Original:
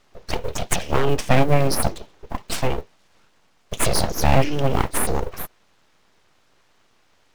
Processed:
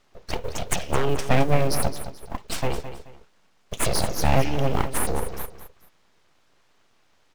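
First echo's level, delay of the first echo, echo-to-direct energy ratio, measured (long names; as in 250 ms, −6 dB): −11.5 dB, 215 ms, −11.0 dB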